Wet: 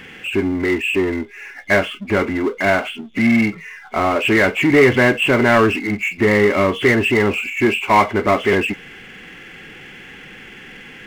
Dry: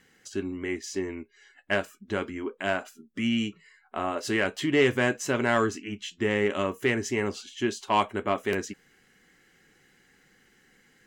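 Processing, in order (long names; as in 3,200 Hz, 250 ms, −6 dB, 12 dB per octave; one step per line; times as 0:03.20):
hearing-aid frequency compression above 2,000 Hz 4 to 1
power curve on the samples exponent 0.7
level +7.5 dB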